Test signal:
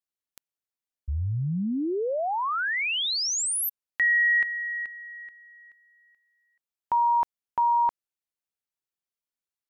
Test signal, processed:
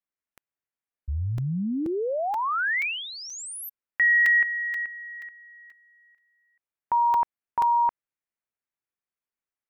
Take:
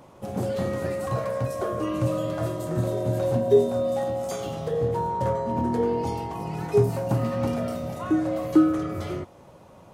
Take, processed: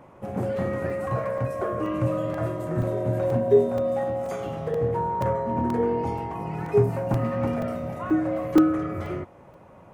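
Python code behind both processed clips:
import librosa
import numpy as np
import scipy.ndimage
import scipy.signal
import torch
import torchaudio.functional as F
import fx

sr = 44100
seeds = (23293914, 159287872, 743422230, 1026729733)

y = fx.high_shelf_res(x, sr, hz=2900.0, db=-9.0, q=1.5)
y = fx.buffer_crackle(y, sr, first_s=0.9, period_s=0.48, block=128, kind='zero')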